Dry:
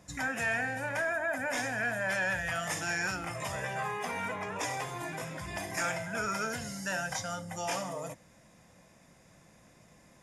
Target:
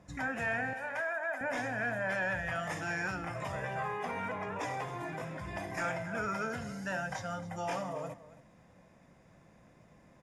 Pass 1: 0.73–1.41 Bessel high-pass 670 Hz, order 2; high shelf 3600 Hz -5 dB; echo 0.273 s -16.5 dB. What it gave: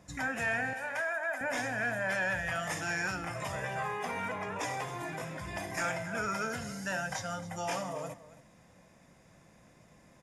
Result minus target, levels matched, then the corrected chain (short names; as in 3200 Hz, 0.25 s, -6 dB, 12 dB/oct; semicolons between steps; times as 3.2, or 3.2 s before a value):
8000 Hz band +6.5 dB
0.73–1.41 Bessel high-pass 670 Hz, order 2; high shelf 3600 Hz -15.5 dB; echo 0.273 s -16.5 dB